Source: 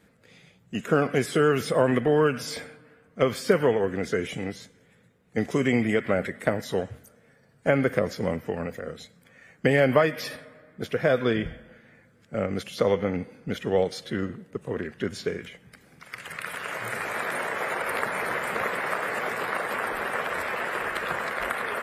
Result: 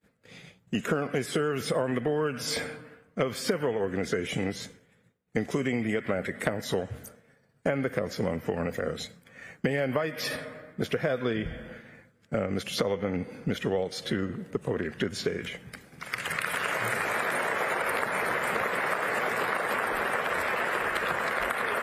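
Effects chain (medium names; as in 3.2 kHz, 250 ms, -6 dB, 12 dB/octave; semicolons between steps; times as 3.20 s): expander -50 dBFS; compression 6:1, threshold -33 dBFS, peak gain reduction 17.5 dB; trim +7.5 dB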